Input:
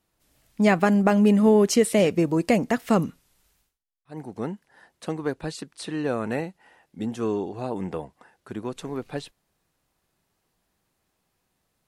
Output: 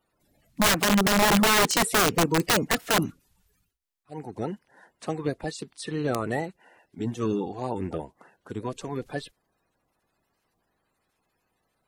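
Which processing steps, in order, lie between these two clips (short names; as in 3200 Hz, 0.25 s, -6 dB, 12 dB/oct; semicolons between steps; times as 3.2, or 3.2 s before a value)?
bin magnitudes rounded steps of 30 dB; wrapped overs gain 15 dB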